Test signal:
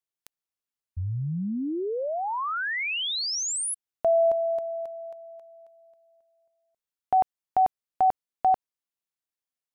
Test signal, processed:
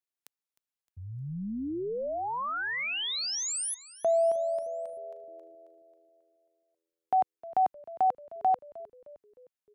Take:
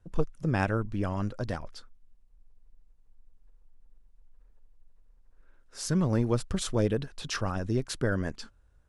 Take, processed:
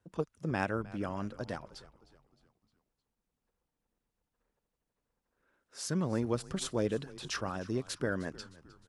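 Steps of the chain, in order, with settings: Bessel high-pass 170 Hz, order 2; on a send: frequency-shifting echo 0.308 s, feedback 48%, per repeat -84 Hz, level -19 dB; on the sum: gain -3.5 dB

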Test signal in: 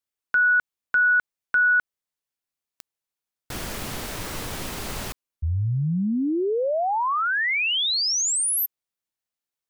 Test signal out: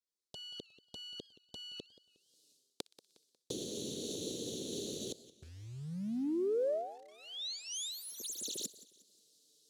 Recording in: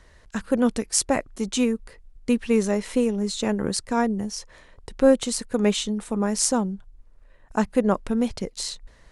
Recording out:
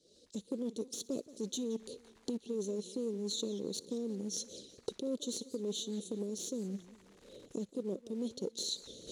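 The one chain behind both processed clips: tracing distortion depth 0.18 ms; recorder AGC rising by 47 dB/s, up to +32 dB; elliptic band-stop 460–3900 Hz, stop band 50 dB; reverse; compressor 16:1, threshold -27 dBFS; reverse; envelope flanger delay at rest 8.5 ms, full sweep at -31 dBFS; short-mantissa float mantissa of 4-bit; soft clip -19 dBFS; BPF 290–8000 Hz; on a send: thin delay 61 ms, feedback 69%, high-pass 1800 Hz, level -23 dB; on the sum: warbling echo 0.18 s, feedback 41%, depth 197 cents, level -18 dB; gain -2 dB

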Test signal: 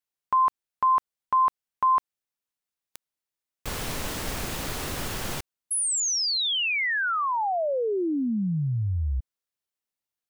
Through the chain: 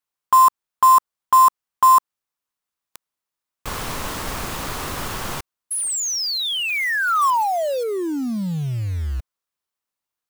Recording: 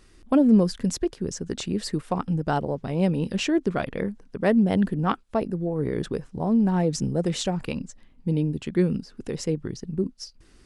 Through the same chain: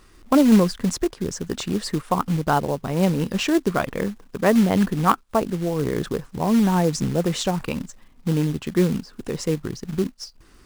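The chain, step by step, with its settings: bell 1100 Hz +7 dB 0.79 oct; short-mantissa float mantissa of 2-bit; gain +2.5 dB

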